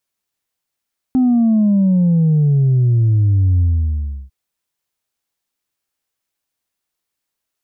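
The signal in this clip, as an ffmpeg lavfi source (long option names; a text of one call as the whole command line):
ffmpeg -f lavfi -i "aevalsrc='0.299*clip((3.15-t)/0.7,0,1)*tanh(1.12*sin(2*PI*260*3.15/log(65/260)*(exp(log(65/260)*t/3.15)-1)))/tanh(1.12)':duration=3.15:sample_rate=44100" out.wav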